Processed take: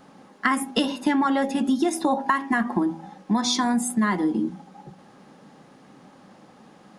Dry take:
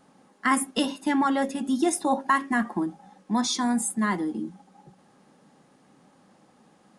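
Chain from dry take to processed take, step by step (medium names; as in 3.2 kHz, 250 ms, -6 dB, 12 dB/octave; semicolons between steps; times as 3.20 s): peaking EQ 8.8 kHz -8 dB 0.76 oct; de-hum 81.65 Hz, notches 12; compression 6:1, threshold -27 dBFS, peak gain reduction 10 dB; trim +8.5 dB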